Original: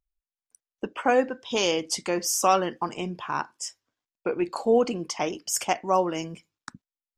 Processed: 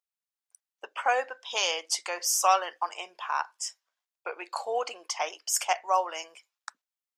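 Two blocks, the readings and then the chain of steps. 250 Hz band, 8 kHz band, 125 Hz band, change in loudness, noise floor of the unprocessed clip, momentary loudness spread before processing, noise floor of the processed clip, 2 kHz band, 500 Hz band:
-25.0 dB, 0.0 dB, under -40 dB, -2.5 dB, under -85 dBFS, 13 LU, under -85 dBFS, 0.0 dB, -9.0 dB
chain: HPF 650 Hz 24 dB/oct

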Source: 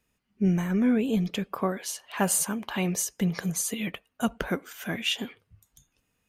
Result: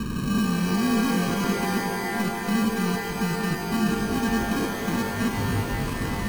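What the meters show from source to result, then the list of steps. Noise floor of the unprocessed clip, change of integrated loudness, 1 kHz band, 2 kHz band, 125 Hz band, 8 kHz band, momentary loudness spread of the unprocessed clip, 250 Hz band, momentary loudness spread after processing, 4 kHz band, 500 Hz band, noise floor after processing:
-76 dBFS, +3.0 dB, +8.0 dB, +6.5 dB, +4.5 dB, -5.5 dB, 10 LU, +4.0 dB, 4 LU, +1.5 dB, +3.5 dB, -30 dBFS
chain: infinite clipping; inverse Chebyshev low-pass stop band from 2200 Hz, stop band 80 dB; bell 220 Hz +6.5 dB 1.8 oct; on a send: reverse echo 0.394 s -10 dB; on the sum: sample-and-hold 32×; shimmer reverb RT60 3.3 s, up +12 st, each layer -2 dB, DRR 4 dB

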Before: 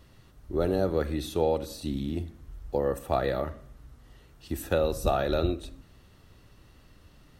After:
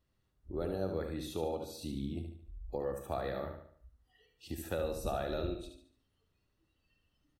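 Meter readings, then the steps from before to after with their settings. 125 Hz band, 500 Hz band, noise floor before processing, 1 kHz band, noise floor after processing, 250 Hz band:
-9.0 dB, -9.5 dB, -57 dBFS, -9.5 dB, -78 dBFS, -8.5 dB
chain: compressor 1.5:1, threshold -48 dBFS, peak gain reduction 10 dB; spectral noise reduction 22 dB; on a send: feedback echo 73 ms, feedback 41%, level -6.5 dB; on the sum: gain -1.5 dB

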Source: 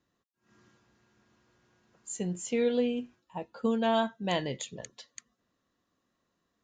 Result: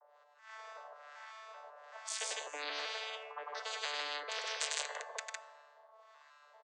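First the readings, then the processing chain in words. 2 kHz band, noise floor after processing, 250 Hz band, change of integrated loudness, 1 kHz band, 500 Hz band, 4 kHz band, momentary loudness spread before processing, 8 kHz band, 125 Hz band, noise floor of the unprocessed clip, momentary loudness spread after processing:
+1.5 dB, -65 dBFS, -35.0 dB, -8.5 dB, -6.5 dB, -15.0 dB, +1.5 dB, 18 LU, +0.5 dB, under -40 dB, -80 dBFS, 16 LU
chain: arpeggiated vocoder bare fifth, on D3, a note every 0.384 s; steep high-pass 530 Hz 72 dB/oct; high shelf 4700 Hz -9 dB; harmonic tremolo 1.2 Hz, depth 100%, crossover 1000 Hz; loudspeakers at several distances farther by 34 m -6 dB, 54 m -3 dB; FDN reverb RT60 1.7 s, low-frequency decay 0.75×, high-frequency decay 0.4×, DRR 17.5 dB; spectral compressor 10:1; gain +9 dB

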